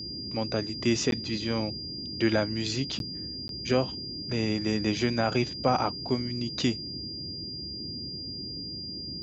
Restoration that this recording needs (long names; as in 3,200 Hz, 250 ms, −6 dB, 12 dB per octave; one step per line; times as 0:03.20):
notch filter 4,800 Hz, Q 30
repair the gap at 0:01.11/0:02.99/0:03.48, 12 ms
noise reduction from a noise print 30 dB